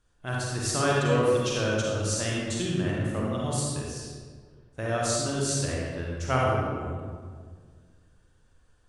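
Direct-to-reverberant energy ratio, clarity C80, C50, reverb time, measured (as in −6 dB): −4.5 dB, 0.0 dB, −3.0 dB, 1.7 s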